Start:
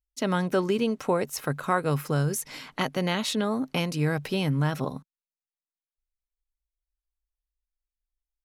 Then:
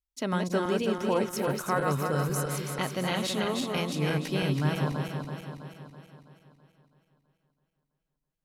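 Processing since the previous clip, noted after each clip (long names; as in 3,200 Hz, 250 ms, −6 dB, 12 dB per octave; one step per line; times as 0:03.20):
feedback delay that plays each chunk backwards 164 ms, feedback 72%, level −3.5 dB
level −4 dB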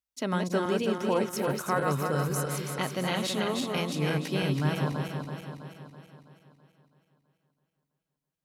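high-pass filter 84 Hz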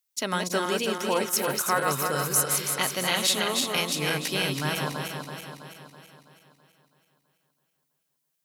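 spectral tilt +3 dB per octave
level +3.5 dB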